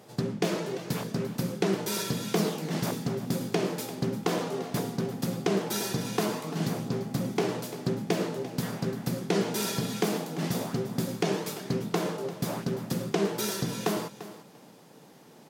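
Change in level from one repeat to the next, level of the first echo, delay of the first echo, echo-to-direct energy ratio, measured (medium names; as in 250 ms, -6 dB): -16.0 dB, -14.5 dB, 344 ms, -14.5 dB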